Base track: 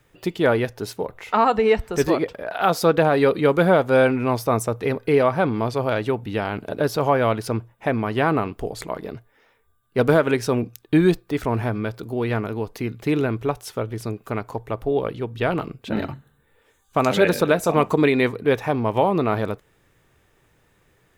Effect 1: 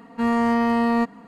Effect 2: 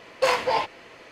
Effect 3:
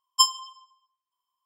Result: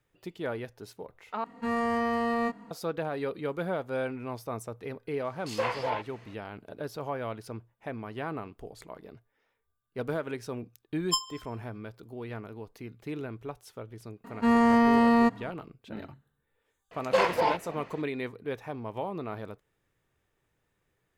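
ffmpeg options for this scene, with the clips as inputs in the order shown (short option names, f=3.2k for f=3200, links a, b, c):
-filter_complex "[1:a]asplit=2[a][b];[2:a]asplit=2[c][d];[0:a]volume=-15.5dB[e];[a]asplit=2[f][g];[g]adelay=24,volume=-4.5dB[h];[f][h]amix=inputs=2:normalize=0[i];[c]acrossover=split=3400[j][k];[j]adelay=120[l];[l][k]amix=inputs=2:normalize=0[m];[d]highshelf=f=3.4k:g=-11[n];[e]asplit=2[o][p];[o]atrim=end=1.444[q];[i]atrim=end=1.27,asetpts=PTS-STARTPTS,volume=-7dB[r];[p]atrim=start=2.706[s];[m]atrim=end=1.11,asetpts=PTS-STARTPTS,volume=-8dB,afade=t=in:d=0.004:c=hsin,afade=t=out:st=1.106:d=0.004:c=hsin,adelay=5240[t];[3:a]atrim=end=1.45,asetpts=PTS-STARTPTS,volume=-8.5dB,afade=t=in:d=0.004:c=hsin,afade=t=out:st=1.446:d=0.004:c=hsin,adelay=10930[u];[b]atrim=end=1.27,asetpts=PTS-STARTPTS,volume=-1dB,afade=t=in:d=0.004:c=hsin,afade=t=out:st=1.266:d=0.004:c=hsin,adelay=14240[v];[n]atrim=end=1.11,asetpts=PTS-STARTPTS,volume=-1.5dB,afade=t=in:d=0.004:c=hsin,afade=t=out:st=1.106:d=0.004:c=hsin,adelay=16910[w];[q][r]acrossfade=d=0.004:c1=hsin:c2=hsin[x];[x][s]acrossfade=d=0.004:c1=hsin:c2=hsin[y];[y][t][u][v][w]amix=inputs=5:normalize=0"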